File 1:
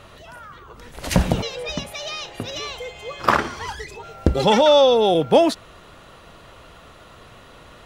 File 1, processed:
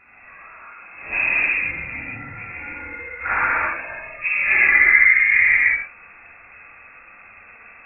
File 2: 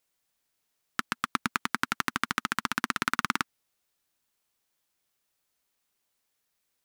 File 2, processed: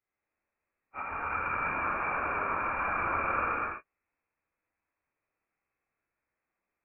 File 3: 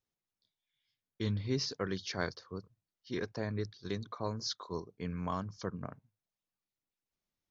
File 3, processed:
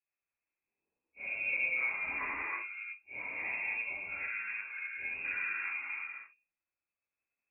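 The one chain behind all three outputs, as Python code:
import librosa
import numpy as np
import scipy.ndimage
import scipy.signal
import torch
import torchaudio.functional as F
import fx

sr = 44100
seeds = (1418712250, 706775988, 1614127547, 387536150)

y = fx.phase_scramble(x, sr, seeds[0], window_ms=100)
y = fx.freq_invert(y, sr, carrier_hz=2600)
y = fx.rev_gated(y, sr, seeds[1], gate_ms=370, shape='flat', drr_db=-8.0)
y = y * librosa.db_to_amplitude(-8.0)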